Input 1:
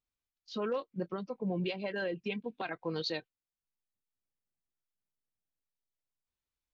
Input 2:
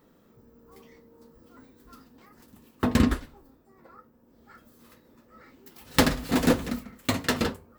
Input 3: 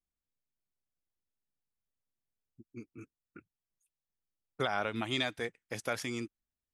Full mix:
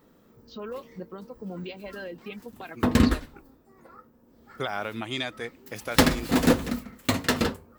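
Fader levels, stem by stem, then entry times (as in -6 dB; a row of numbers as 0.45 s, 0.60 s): -3.0 dB, +1.5 dB, +1.5 dB; 0.00 s, 0.00 s, 0.00 s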